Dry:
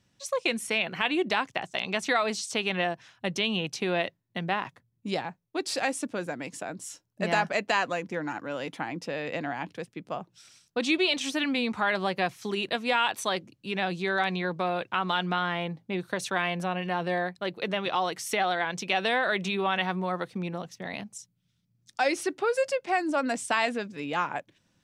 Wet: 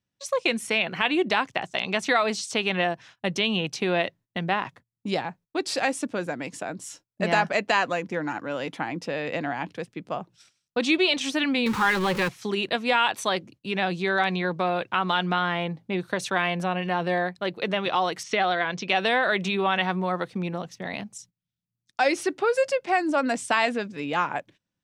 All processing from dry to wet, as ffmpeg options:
ffmpeg -i in.wav -filter_complex "[0:a]asettb=1/sr,asplit=3[link_01][link_02][link_03];[link_01]atrim=end=11.664[link_04];[link_02]atrim=start=11.66:end=12.29,asetpts=PTS-STARTPTS,afade=type=in:duration=0.004:curve=qsin,afade=type=out:start_time=0.626:duration=0.004:curve=qsin,aeval=exprs='val(0)+0.5*0.0316*sgn(val(0))':channel_layout=same,asuperstop=centerf=670:order=8:qfactor=3.2[link_05];[link_03]atrim=start=12.286[link_06];[link_04][link_05]acrossfade=duration=0.004:curve1=hsin:curve2=qsin[link_07];[link_07][link_06]acrossfade=duration=0.004:curve1=qsin:curve2=hsin,asettb=1/sr,asplit=3[link_08][link_09][link_10];[link_08]atrim=end=18.234[link_11];[link_09]atrim=start=18.23:end=18.89,asetpts=PTS-STARTPTS,afade=type=in:duration=0.004:curve=qsin,afade=type=out:start_time=0.656:duration=0.004:curve=qsin,lowpass=frequency=5800:width=0.5412,lowpass=frequency=5800:width=1.3066,bandreject=frequency=850:width=11[link_12];[link_10]atrim=start=18.886[link_13];[link_11][link_12]acrossfade=duration=0.004:curve1=hsin:curve2=qsin[link_14];[link_14][link_13]acrossfade=duration=0.004:curve1=qsin:curve2=hsin,agate=range=-19dB:threshold=-52dB:ratio=16:detection=peak,highshelf=frequency=9100:gain=-6.5,volume=3.5dB" out.wav

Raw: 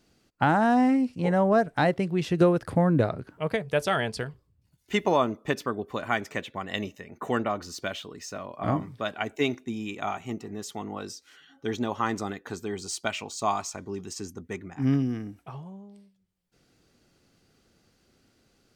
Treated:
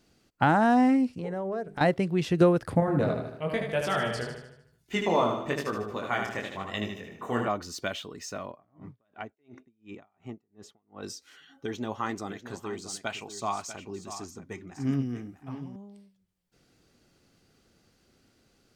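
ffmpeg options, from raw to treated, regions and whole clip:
ffmpeg -i in.wav -filter_complex "[0:a]asettb=1/sr,asplit=3[link_01][link_02][link_03];[link_01]atrim=end=1.184[link_04];[link_02]atrim=start=1.18:end=1.81,asetpts=PTS-STARTPTS,afade=type=in:duration=0.004:curve=qsin,afade=type=out:start_time=0.626:duration=0.004:curve=qsin,equalizer=frequency=420:width_type=o:width=0.6:gain=8.5,bandreject=frequency=50:width_type=h:width=6,bandreject=frequency=100:width_type=h:width=6,bandreject=frequency=150:width_type=h:width=6,bandreject=frequency=200:width_type=h:width=6,bandreject=frequency=250:width_type=h:width=6,bandreject=frequency=300:width_type=h:width=6,bandreject=frequency=350:width_type=h:width=6,bandreject=frequency=400:width_type=h:width=6,acompressor=threshold=-34dB:ratio=3:attack=3.2:release=140:knee=1:detection=peak[link_05];[link_03]atrim=start=1.806[link_06];[link_04][link_05]acrossfade=duration=0.004:curve1=hsin:curve2=qsin[link_07];[link_07][link_06]acrossfade=duration=0.004:curve1=qsin:curve2=hsin,asettb=1/sr,asplit=3[link_08][link_09][link_10];[link_08]atrim=end=2.804[link_11];[link_09]atrim=start=2.8:end=7.48,asetpts=PTS-STARTPTS,afade=type=in:duration=0.004:curve=qsin,afade=type=out:start_time=4.676:duration=0.004:curve=qsin,aecho=1:1:76|152|228|304|380|456|532:0.562|0.292|0.152|0.0791|0.0411|0.0214|0.0111,atrim=end_sample=206388,flanger=delay=19:depth=6.4:speed=1[link_12];[link_10]atrim=start=7.476[link_13];[link_11][link_12]acrossfade=duration=0.004:curve1=hsin:curve2=qsin[link_14];[link_14][link_13]acrossfade=duration=0.004:curve1=qsin:curve2=hsin,asettb=1/sr,asplit=3[link_15][link_16][link_17];[link_15]atrim=end=8.514[link_18];[link_16]atrim=start=8.51:end=11.03,asetpts=PTS-STARTPTS,afade=type=in:duration=0.004:curve=qsin,afade=type=out:start_time=2.516:duration=0.004:curve=qsin,lowpass=frequency=1400:poles=1,acompressor=threshold=-36dB:ratio=2:attack=3.2:release=140:knee=1:detection=peak,aeval=exprs='val(0)*pow(10,-39*(0.5-0.5*cos(2*PI*2.8*n/s))/20)':channel_layout=same[link_19];[link_17]atrim=start=11.026[link_20];[link_18][link_19]acrossfade=duration=0.004:curve1=hsin:curve2=qsin[link_21];[link_21][link_20]acrossfade=duration=0.004:curve1=qsin:curve2=hsin,asettb=1/sr,asplit=3[link_22][link_23][link_24];[link_22]atrim=end=11.664[link_25];[link_23]atrim=start=11.66:end=15.76,asetpts=PTS-STARTPTS,afade=type=in:duration=0.004:curve=qsin,afade=type=out:start_time=4.096:duration=0.004:curve=qsin,flanger=delay=2.5:depth=6.6:regen=68:speed=1.9:shape=sinusoidal,aecho=1:1:641:0.266,atrim=end_sample=180810[link_26];[link_24]atrim=start=15.756[link_27];[link_25][link_26]acrossfade=duration=0.004:curve1=hsin:curve2=qsin[link_28];[link_28][link_27]acrossfade=duration=0.004:curve1=qsin:curve2=hsin" out.wav

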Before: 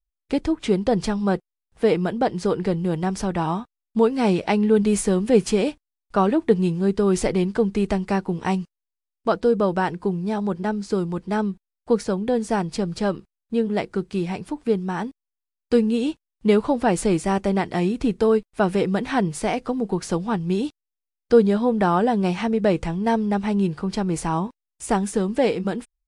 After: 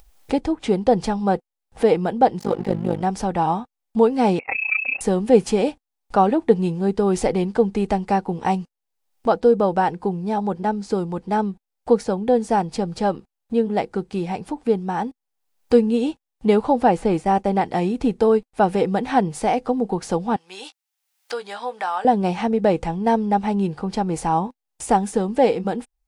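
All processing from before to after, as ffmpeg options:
ffmpeg -i in.wav -filter_complex "[0:a]asettb=1/sr,asplit=3[link_01][link_02][link_03];[link_01]atrim=end=2.394[link_04];[link_02]atrim=start=2.39:end=3.02,asetpts=PTS-STARTPTS,afade=type=in:duration=0.004:curve=qsin,afade=type=out:start_time=0.626:duration=0.004:curve=qsin,aecho=1:1:5.8:0.77,atrim=end_sample=27783,tremolo=f=50:d=0.857,aeval=exprs='sgn(val(0))*max(abs(val(0))-0.0106,0)':channel_layout=same[link_05];[link_03]atrim=start=3.016[link_06];[link_04][link_05]acrossfade=duration=0.004:curve1=hsin:curve2=qsin[link_07];[link_07][link_06]acrossfade=duration=0.004:curve1=qsin:curve2=hsin,asettb=1/sr,asplit=3[link_08][link_09][link_10];[link_08]atrim=end=4.394[link_11];[link_09]atrim=start=4.39:end=5.01,asetpts=PTS-STARTPTS,afade=type=in:duration=0.004:curve=qsin,afade=type=out:start_time=0.616:duration=0.004:curve=qsin,equalizer=frequency=1100:width_type=o:width=0.82:gain=-4.5,tremolo=f=30:d=0.919,lowpass=frequency=2400:width_type=q:width=0.5098,lowpass=frequency=2400:width_type=q:width=0.6013,lowpass=frequency=2400:width_type=q:width=0.9,lowpass=frequency=2400:width_type=q:width=2.563,afreqshift=-2800[link_12];[link_10]atrim=start=5.006[link_13];[link_11][link_12]acrossfade=duration=0.004:curve1=hsin:curve2=qsin[link_14];[link_14][link_13]acrossfade=duration=0.004:curve1=qsin:curve2=hsin,asettb=1/sr,asplit=3[link_15][link_16][link_17];[link_15]atrim=end=16.884[link_18];[link_16]atrim=start=16.88:end=17.61,asetpts=PTS-STARTPTS,afade=type=in:duration=0.004:curve=qsin,afade=type=out:start_time=0.726:duration=0.004:curve=qsin,agate=range=-33dB:threshold=-31dB:ratio=3:release=100:detection=peak,acrossover=split=3100[link_19][link_20];[link_20]acompressor=threshold=-43dB:ratio=4:attack=1:release=60[link_21];[link_19][link_21]amix=inputs=2:normalize=0[link_22];[link_17]atrim=start=17.606[link_23];[link_18][link_22]acrossfade=duration=0.004:curve1=hsin:curve2=qsin[link_24];[link_24][link_23]acrossfade=duration=0.004:curve1=qsin:curve2=hsin,asettb=1/sr,asplit=3[link_25][link_26][link_27];[link_25]atrim=end=20.364[link_28];[link_26]atrim=start=20.36:end=22.05,asetpts=PTS-STARTPTS,afade=type=in:duration=0.004:curve=qsin,afade=type=out:start_time=1.686:duration=0.004:curve=qsin,highpass=1300,asplit=2[link_29][link_30];[link_30]adelay=16,volume=-11.5dB[link_31];[link_29][link_31]amix=inputs=2:normalize=0,atrim=end_sample=74529[link_32];[link_27]atrim=start=22.046[link_33];[link_28][link_32]acrossfade=duration=0.004:curve1=hsin:curve2=qsin[link_34];[link_34][link_33]acrossfade=duration=0.004:curve1=qsin:curve2=hsin,acompressor=mode=upward:threshold=-26dB:ratio=2.5,equalizer=frequency=250:width_type=o:width=0.33:gain=4,equalizer=frequency=500:width_type=o:width=0.33:gain=6,equalizer=frequency=800:width_type=o:width=0.33:gain=11,volume=-1.5dB" out.wav

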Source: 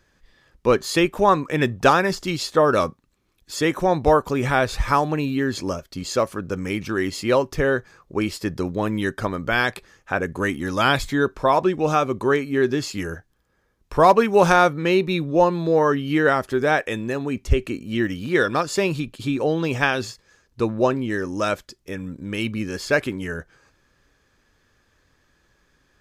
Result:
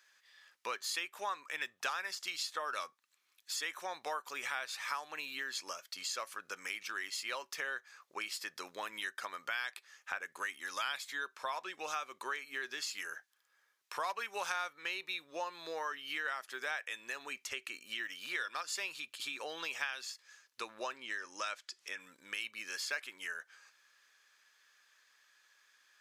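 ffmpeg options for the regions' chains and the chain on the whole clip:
ffmpeg -i in.wav -filter_complex "[0:a]asettb=1/sr,asplit=3[link_01][link_02][link_03];[link_01]atrim=end=20.964[link_04];[link_02]atrim=start=20.96:end=22,asetpts=PTS-STARTPTS,afade=type=in:duration=0.004:curve=qsin,afade=type=out:start_time=1.036:duration=0.004:curve=qsin,lowpass=8100,acompressor=mode=upward:threshold=-35dB:ratio=2.5:attack=3.2:release=140:knee=2.83:detection=peak[link_05];[link_03]atrim=start=21.996[link_06];[link_04][link_05]acrossfade=duration=0.004:curve1=hsin:curve2=qsin[link_07];[link_07][link_06]acrossfade=duration=0.004:curve1=qsin:curve2=hsin,highpass=1500,acompressor=threshold=-39dB:ratio=3" out.wav

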